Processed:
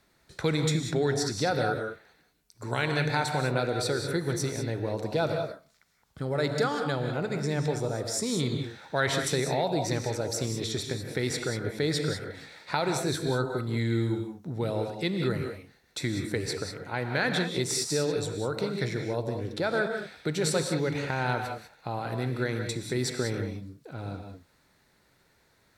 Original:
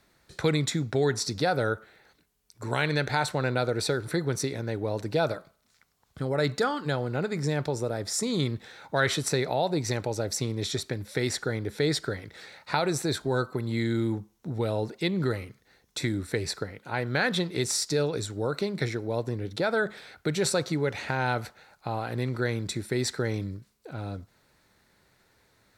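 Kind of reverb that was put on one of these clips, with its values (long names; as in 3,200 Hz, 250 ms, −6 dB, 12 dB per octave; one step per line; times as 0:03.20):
reverb whose tail is shaped and stops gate 220 ms rising, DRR 4.5 dB
level −2 dB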